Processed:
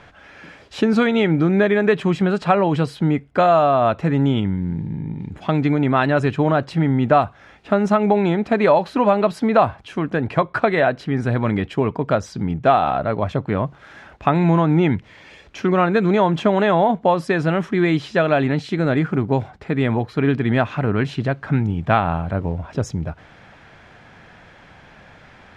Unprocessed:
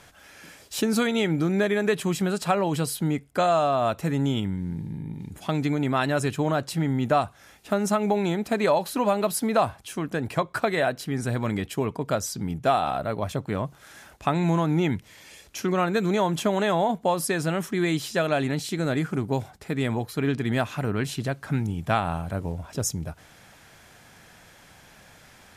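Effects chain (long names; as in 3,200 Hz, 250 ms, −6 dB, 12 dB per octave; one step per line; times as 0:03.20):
low-pass filter 2,700 Hz 12 dB per octave
level +7 dB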